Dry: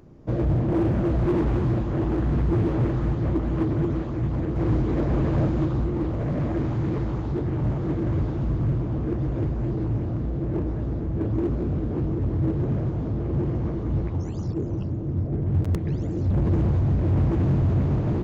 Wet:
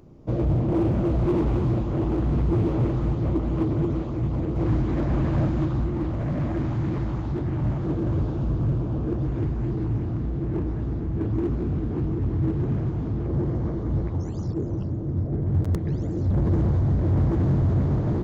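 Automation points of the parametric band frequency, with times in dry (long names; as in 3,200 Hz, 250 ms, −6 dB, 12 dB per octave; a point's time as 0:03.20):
parametric band −6.5 dB 0.48 octaves
1,700 Hz
from 0:04.66 450 Hz
from 0:07.85 2,000 Hz
from 0:09.26 560 Hz
from 0:13.26 2,600 Hz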